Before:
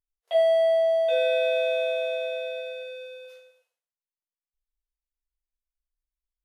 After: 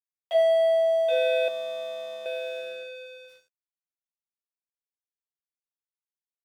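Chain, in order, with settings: 1.48–2.26 EQ curve 280 Hz 0 dB, 560 Hz -12 dB, 810 Hz +4 dB, 1200 Hz +10 dB, 1800 Hz -28 dB, 2700 Hz -10 dB, 3900 Hz -4 dB; crossover distortion -49.5 dBFS

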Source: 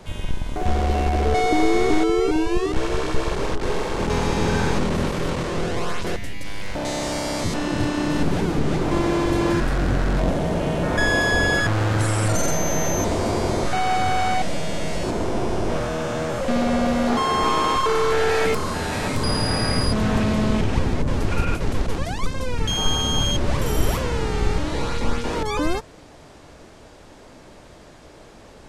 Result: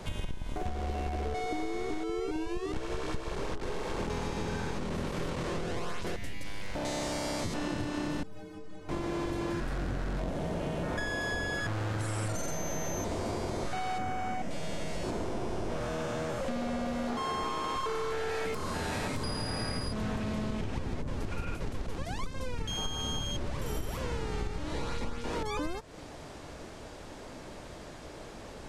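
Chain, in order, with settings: 13.98–14.51 fifteen-band EQ 250 Hz +7 dB, 4000 Hz -11 dB, 10000 Hz -7 dB; compressor 12:1, threshold -30 dBFS, peak gain reduction 18.5 dB; 8.23–8.89 metallic resonator 92 Hz, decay 0.55 s, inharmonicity 0.03

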